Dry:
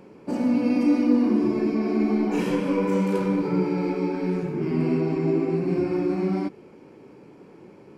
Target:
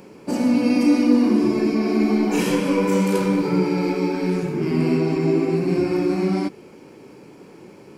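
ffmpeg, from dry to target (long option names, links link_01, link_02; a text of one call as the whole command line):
ffmpeg -i in.wav -af "highshelf=frequency=3600:gain=12,volume=3.5dB" out.wav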